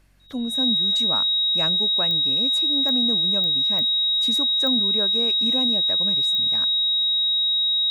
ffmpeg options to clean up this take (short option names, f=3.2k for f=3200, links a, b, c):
-af "adeclick=t=4,bandreject=f=46.4:t=h:w=4,bandreject=f=92.8:t=h:w=4,bandreject=f=139.2:t=h:w=4,bandreject=f=185.6:t=h:w=4,bandreject=f=3.8k:w=30"